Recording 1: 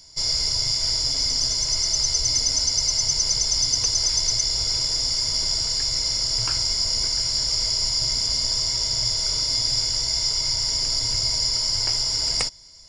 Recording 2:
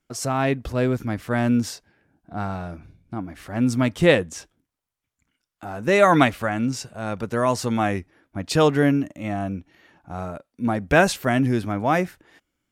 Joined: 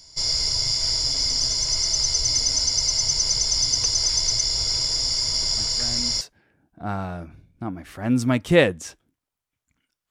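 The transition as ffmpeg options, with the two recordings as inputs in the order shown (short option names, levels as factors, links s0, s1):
-filter_complex "[1:a]asplit=2[s0][s1];[0:a]apad=whole_dur=10.1,atrim=end=10.1,atrim=end=6.212[s2];[s1]atrim=start=1.718:end=5.61[s3];[s0]atrim=start=1.08:end=1.72,asetpts=PTS-STARTPTS,volume=0.158,afade=t=in:d=0.004:c=hsin,afade=t=out:st=0.636:d=0.004:c=hsin,adelay=245637S[s4];[s2][s3]acrossfade=d=0.004:c1=hsin:c2=hsin[s5];[s5][s4]amix=inputs=2:normalize=0"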